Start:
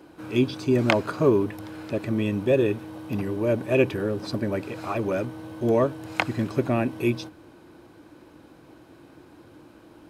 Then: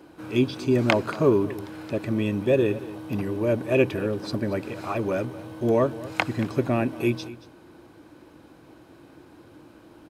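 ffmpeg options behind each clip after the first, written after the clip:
ffmpeg -i in.wav -af "aecho=1:1:229:0.133" out.wav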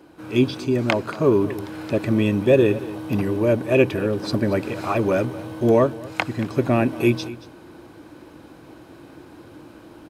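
ffmpeg -i in.wav -af "dynaudnorm=framelen=240:gausssize=3:maxgain=6dB" out.wav

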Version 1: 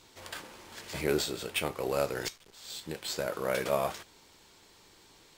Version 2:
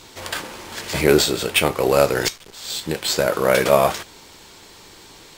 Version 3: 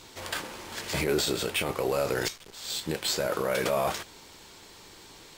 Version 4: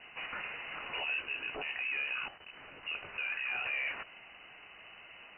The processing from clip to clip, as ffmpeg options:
ffmpeg -i in.wav -af "acontrast=56,volume=8dB" out.wav
ffmpeg -i in.wav -af "alimiter=limit=-12dB:level=0:latency=1:release=19,volume=-5.5dB" out.wav
ffmpeg -i in.wav -af "asoftclip=type=tanh:threshold=-22.5dB,alimiter=level_in=5.5dB:limit=-24dB:level=0:latency=1:release=73,volume=-5.5dB,lowpass=frequency=2600:width_type=q:width=0.5098,lowpass=frequency=2600:width_type=q:width=0.6013,lowpass=frequency=2600:width_type=q:width=0.9,lowpass=frequency=2600:width_type=q:width=2.563,afreqshift=-3000" out.wav

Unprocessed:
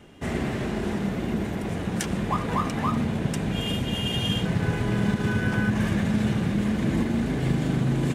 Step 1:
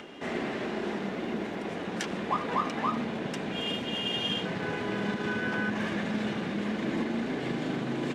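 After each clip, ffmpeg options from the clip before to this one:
ffmpeg -i in.wav -filter_complex "[0:a]highshelf=frequency=8100:gain=6.5,acompressor=mode=upward:threshold=-32dB:ratio=2.5,acrossover=split=220 5500:gain=0.0794 1 0.0891[link_01][link_02][link_03];[link_01][link_02][link_03]amix=inputs=3:normalize=0,volume=-1.5dB" out.wav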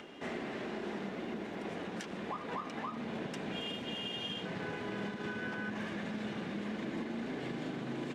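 ffmpeg -i in.wav -af "alimiter=level_in=0.5dB:limit=-24dB:level=0:latency=1:release=269,volume=-0.5dB,volume=-5dB" out.wav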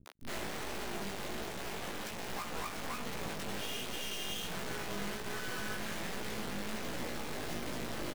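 ffmpeg -i in.wav -filter_complex "[0:a]acrusher=bits=4:dc=4:mix=0:aa=0.000001,flanger=delay=16:depth=4.2:speed=1.3,acrossover=split=260[link_01][link_02];[link_02]adelay=60[link_03];[link_01][link_03]amix=inputs=2:normalize=0,volume=6dB" out.wav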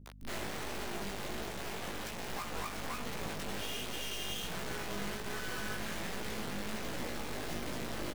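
ffmpeg -i in.wav -af "aeval=exprs='val(0)+0.00251*(sin(2*PI*50*n/s)+sin(2*PI*2*50*n/s)/2+sin(2*PI*3*50*n/s)/3+sin(2*PI*4*50*n/s)/4+sin(2*PI*5*50*n/s)/5)':channel_layout=same" out.wav

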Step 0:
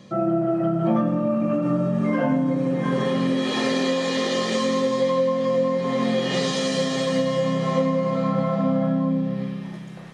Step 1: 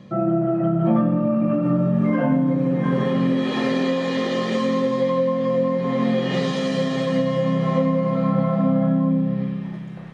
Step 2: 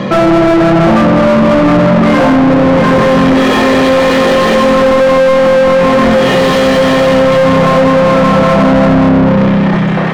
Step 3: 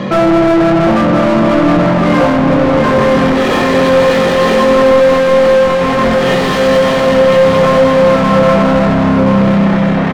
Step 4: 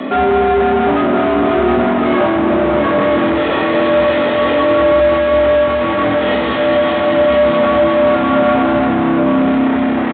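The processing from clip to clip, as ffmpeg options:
ffmpeg -i in.wav -af "bass=frequency=250:gain=5,treble=frequency=4000:gain=-11" out.wav
ffmpeg -i in.wav -filter_complex "[0:a]asplit=2[link_01][link_02];[link_02]alimiter=limit=-16dB:level=0:latency=1,volume=1dB[link_03];[link_01][link_03]amix=inputs=2:normalize=0,asplit=2[link_04][link_05];[link_05]highpass=frequency=720:poles=1,volume=35dB,asoftclip=type=tanh:threshold=-4.5dB[link_06];[link_04][link_06]amix=inputs=2:normalize=0,lowpass=frequency=1400:poles=1,volume=-6dB,volume=3.5dB" out.wav
ffmpeg -i in.wav -filter_complex "[0:a]asplit=2[link_01][link_02];[link_02]adelay=21,volume=-12dB[link_03];[link_01][link_03]amix=inputs=2:normalize=0,asplit=2[link_04][link_05];[link_05]aecho=0:1:1021:0.422[link_06];[link_04][link_06]amix=inputs=2:normalize=0,volume=-3dB" out.wav
ffmpeg -i in.wav -af "aresample=8000,aresample=44100,afreqshift=66,volume=-3.5dB" out.wav

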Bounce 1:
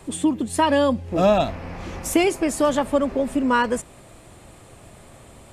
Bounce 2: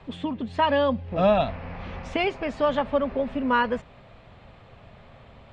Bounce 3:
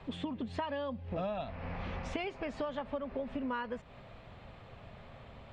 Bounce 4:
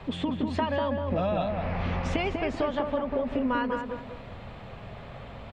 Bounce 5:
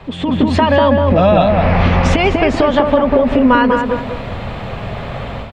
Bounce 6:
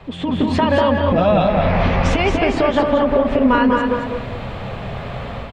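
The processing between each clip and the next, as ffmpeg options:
ffmpeg -i in.wav -af "lowpass=frequency=3800:width=0.5412,lowpass=frequency=3800:width=1.3066,equalizer=frequency=330:width=3.9:gain=-12,volume=-2dB" out.wav
ffmpeg -i in.wav -af "acompressor=threshold=-31dB:ratio=12,volume=-2.5dB" out.wav
ffmpeg -i in.wav -filter_complex "[0:a]asplit=2[link_01][link_02];[link_02]adelay=194,lowpass=frequency=1500:poles=1,volume=-3.5dB,asplit=2[link_03][link_04];[link_04]adelay=194,lowpass=frequency=1500:poles=1,volume=0.4,asplit=2[link_05][link_06];[link_06]adelay=194,lowpass=frequency=1500:poles=1,volume=0.4,asplit=2[link_07][link_08];[link_08]adelay=194,lowpass=frequency=1500:poles=1,volume=0.4,asplit=2[link_09][link_10];[link_10]adelay=194,lowpass=frequency=1500:poles=1,volume=0.4[link_11];[link_01][link_03][link_05][link_07][link_09][link_11]amix=inputs=6:normalize=0,volume=8dB" out.wav
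ffmpeg -i in.wav -af "alimiter=limit=-19.5dB:level=0:latency=1:release=131,dynaudnorm=framelen=180:gausssize=3:maxgain=12dB,volume=6dB" out.wav
ffmpeg -i in.wav -filter_complex "[0:a]flanger=delay=1.5:depth=6.3:regen=-76:speed=1.5:shape=sinusoidal,asplit=2[link_01][link_02];[link_02]aecho=0:1:225:0.501[link_03];[link_01][link_03]amix=inputs=2:normalize=0" out.wav

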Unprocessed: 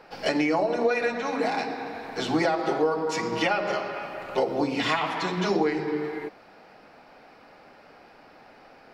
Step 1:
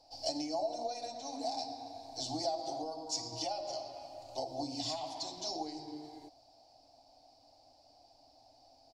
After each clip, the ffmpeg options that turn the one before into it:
ffmpeg -i in.wav -af "firequalizer=gain_entry='entry(120,0);entry(190,-29);entry(270,-4);entry(420,-21);entry(680,2);entry(1300,-29);entry(1800,-28);entry(4600,9);entry(7400,6);entry(12000,-4)':delay=0.05:min_phase=1,volume=-7dB" out.wav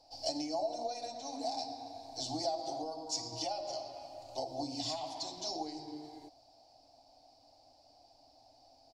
ffmpeg -i in.wav -af anull out.wav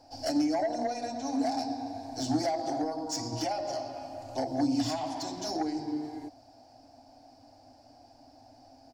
ffmpeg -i in.wav -af "asoftclip=type=tanh:threshold=-29dB,equalizer=frequency=100:width_type=o:width=0.67:gain=9,equalizer=frequency=250:width_type=o:width=0.67:gain=12,equalizer=frequency=1600:width_type=o:width=0.67:gain=11,equalizer=frequency=4000:width_type=o:width=0.67:gain=-8,volume=5.5dB" out.wav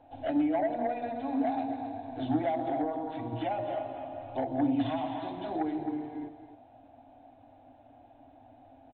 ffmpeg -i in.wav -af "aecho=1:1:264:0.299,aresample=8000,aresample=44100" out.wav

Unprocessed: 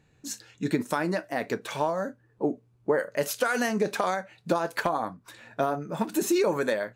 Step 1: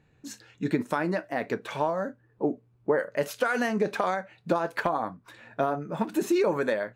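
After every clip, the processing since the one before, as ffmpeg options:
ffmpeg -i in.wav -af "bass=frequency=250:gain=0,treble=frequency=4000:gain=-9" out.wav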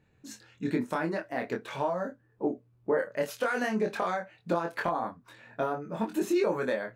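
ffmpeg -i in.wav -af "flanger=delay=22.5:depth=2.1:speed=0.48" out.wav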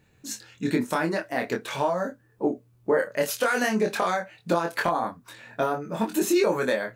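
ffmpeg -i in.wav -af "highshelf=frequency=3800:gain=10.5,volume=4.5dB" out.wav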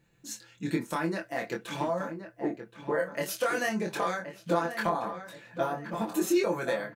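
ffmpeg -i in.wav -filter_complex "[0:a]aecho=1:1:5.9:0.56,asplit=2[link_01][link_02];[link_02]adelay=1073,lowpass=frequency=1800:poles=1,volume=-9dB,asplit=2[link_03][link_04];[link_04]adelay=1073,lowpass=frequency=1800:poles=1,volume=0.41,asplit=2[link_05][link_06];[link_06]adelay=1073,lowpass=frequency=1800:poles=1,volume=0.41,asplit=2[link_07][link_08];[link_08]adelay=1073,lowpass=frequency=1800:poles=1,volume=0.41,asplit=2[link_09][link_10];[link_10]adelay=1073,lowpass=frequency=1800:poles=1,volume=0.41[link_11];[link_03][link_05][link_07][link_09][link_11]amix=inputs=5:normalize=0[link_12];[link_01][link_12]amix=inputs=2:normalize=0,volume=-6.5dB" out.wav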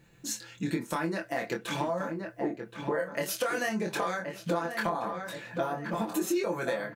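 ffmpeg -i in.wav -af "acompressor=threshold=-39dB:ratio=2.5,volume=7.5dB" out.wav

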